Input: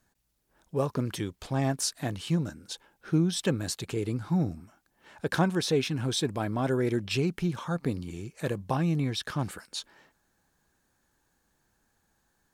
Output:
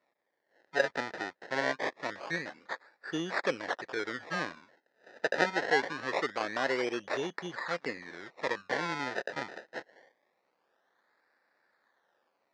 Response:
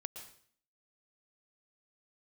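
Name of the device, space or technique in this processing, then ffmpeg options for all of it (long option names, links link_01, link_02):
circuit-bent sampling toy: -af "acrusher=samples=27:mix=1:aa=0.000001:lfo=1:lforange=27:lforate=0.24,highpass=490,equalizer=frequency=530:width_type=q:width=4:gain=4,equalizer=frequency=1800:width_type=q:width=4:gain=10,equalizer=frequency=2900:width_type=q:width=4:gain=-6,lowpass=frequency=5300:width=0.5412,lowpass=frequency=5300:width=1.3066"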